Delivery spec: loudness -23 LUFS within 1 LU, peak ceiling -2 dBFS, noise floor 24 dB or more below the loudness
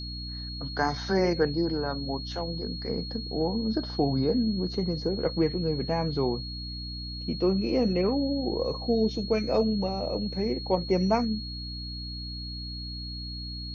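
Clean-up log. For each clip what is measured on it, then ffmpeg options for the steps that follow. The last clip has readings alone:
hum 60 Hz; highest harmonic 300 Hz; hum level -36 dBFS; steady tone 4.3 kHz; tone level -38 dBFS; loudness -29.0 LUFS; peak level -11.0 dBFS; loudness target -23.0 LUFS
-> -af "bandreject=f=60:t=h:w=6,bandreject=f=120:t=h:w=6,bandreject=f=180:t=h:w=6,bandreject=f=240:t=h:w=6,bandreject=f=300:t=h:w=6"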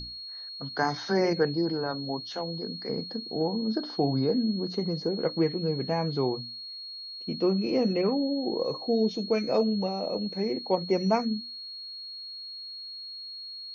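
hum not found; steady tone 4.3 kHz; tone level -38 dBFS
-> -af "bandreject=f=4300:w=30"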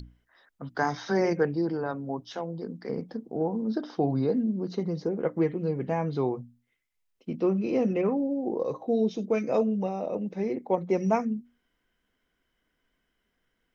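steady tone not found; loudness -29.0 LUFS; peak level -12.0 dBFS; loudness target -23.0 LUFS
-> -af "volume=2"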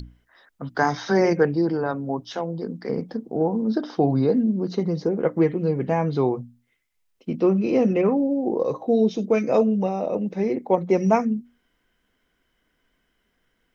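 loudness -23.0 LUFS; peak level -6.0 dBFS; noise floor -71 dBFS

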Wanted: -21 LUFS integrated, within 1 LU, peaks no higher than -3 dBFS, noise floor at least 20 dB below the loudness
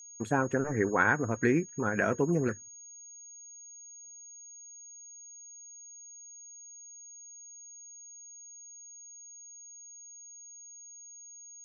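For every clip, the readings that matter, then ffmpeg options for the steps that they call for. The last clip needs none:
steady tone 6.6 kHz; tone level -47 dBFS; loudness -29.0 LUFS; peak level -11.5 dBFS; loudness target -21.0 LUFS
-> -af "bandreject=f=6600:w=30"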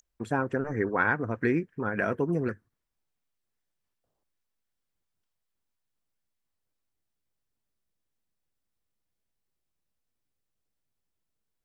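steady tone not found; loudness -29.0 LUFS; peak level -11.5 dBFS; loudness target -21.0 LUFS
-> -af "volume=2.51"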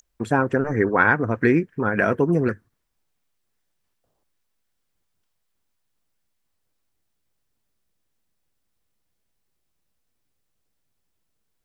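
loudness -21.0 LUFS; peak level -3.5 dBFS; noise floor -74 dBFS

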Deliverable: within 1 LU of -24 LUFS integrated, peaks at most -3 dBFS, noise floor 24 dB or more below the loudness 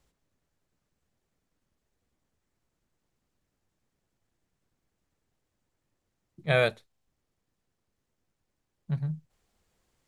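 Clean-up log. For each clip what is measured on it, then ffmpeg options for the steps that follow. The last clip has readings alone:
loudness -29.0 LUFS; peak level -10.5 dBFS; loudness target -24.0 LUFS
-> -af "volume=1.78"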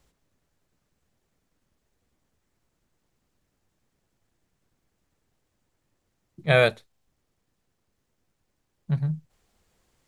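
loudness -24.0 LUFS; peak level -5.5 dBFS; noise floor -77 dBFS

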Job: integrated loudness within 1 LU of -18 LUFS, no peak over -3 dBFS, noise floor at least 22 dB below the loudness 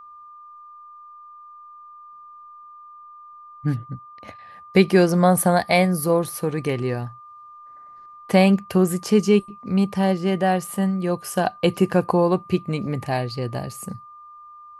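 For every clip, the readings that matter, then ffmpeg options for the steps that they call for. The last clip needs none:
steady tone 1.2 kHz; tone level -41 dBFS; loudness -21.0 LUFS; peak level -2.5 dBFS; loudness target -18.0 LUFS
-> -af "bandreject=f=1200:w=30"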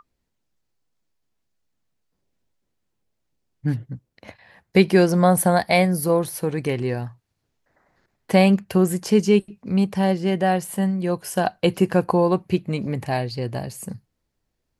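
steady tone not found; loudness -21.0 LUFS; peak level -2.5 dBFS; loudness target -18.0 LUFS
-> -af "volume=1.41,alimiter=limit=0.708:level=0:latency=1"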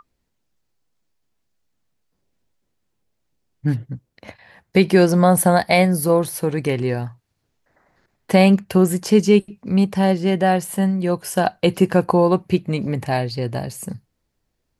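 loudness -18.5 LUFS; peak level -3.0 dBFS; noise floor -73 dBFS

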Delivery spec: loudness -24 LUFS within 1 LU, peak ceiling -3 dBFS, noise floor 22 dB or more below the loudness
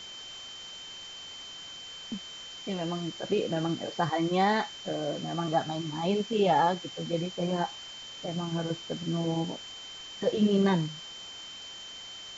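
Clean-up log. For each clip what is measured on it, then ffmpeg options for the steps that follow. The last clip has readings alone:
steady tone 3.1 kHz; tone level -42 dBFS; noise floor -44 dBFS; noise floor target -54 dBFS; loudness -31.5 LUFS; peak level -13.0 dBFS; loudness target -24.0 LUFS
-> -af "bandreject=f=3100:w=30"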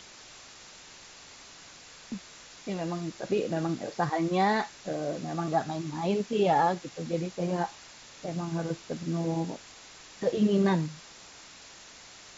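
steady tone not found; noise floor -50 dBFS; noise floor target -52 dBFS
-> -af "afftdn=nr=6:nf=-50"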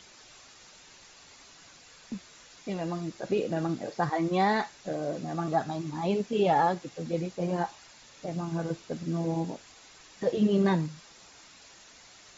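noise floor -54 dBFS; loudness -30.0 LUFS; peak level -13.5 dBFS; loudness target -24.0 LUFS
-> -af "volume=2"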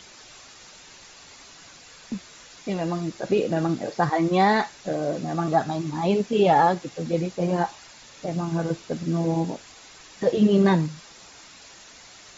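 loudness -24.0 LUFS; peak level -7.5 dBFS; noise floor -48 dBFS

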